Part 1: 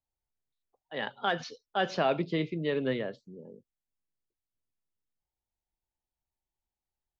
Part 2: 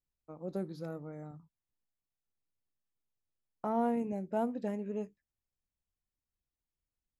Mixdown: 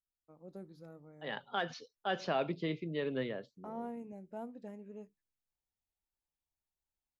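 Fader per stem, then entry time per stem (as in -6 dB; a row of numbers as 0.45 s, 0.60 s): -6.0 dB, -11.5 dB; 0.30 s, 0.00 s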